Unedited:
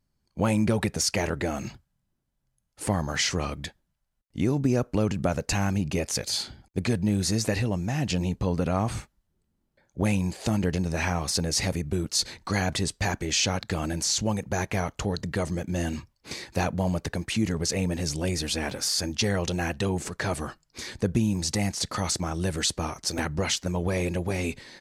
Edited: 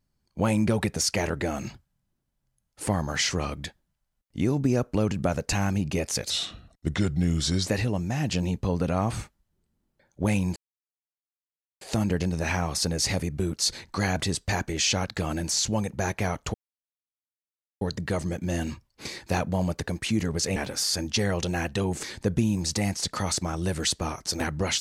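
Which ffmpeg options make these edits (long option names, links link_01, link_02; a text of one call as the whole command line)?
ffmpeg -i in.wav -filter_complex "[0:a]asplit=7[link_01][link_02][link_03][link_04][link_05][link_06][link_07];[link_01]atrim=end=6.304[link_08];[link_02]atrim=start=6.3:end=7.46,asetpts=PTS-STARTPTS,asetrate=37044,aresample=44100[link_09];[link_03]atrim=start=7.456:end=10.34,asetpts=PTS-STARTPTS,afade=type=out:start_time=2.88:duration=0.004:curve=hsin,apad=pad_dur=1.25[link_10];[link_04]atrim=start=10.34:end=15.07,asetpts=PTS-STARTPTS,afade=type=in:duration=0.004:curve=hsin,afade=type=out:start_time=4.726:duration=0.004:curve=hsin,apad=pad_dur=1.27[link_11];[link_05]atrim=start=15.07:end=17.822,asetpts=PTS-STARTPTS,afade=type=in:duration=0.004:curve=hsin[link_12];[link_06]atrim=start=18.608:end=20.082[link_13];[link_07]atrim=start=20.808[link_14];[link_08][link_09]acrossfade=duration=0.004:curve1=hsin:curve2=hsin[link_15];[link_10][link_11][link_12]concat=n=3:v=0:a=1[link_16];[link_15][link_16]acrossfade=duration=0.004:curve1=hsin:curve2=hsin[link_17];[link_17][link_13]acrossfade=duration=0.004:curve1=hsin:curve2=hsin[link_18];[link_18][link_14]acrossfade=duration=0.004:curve1=hsin:curve2=hsin" out.wav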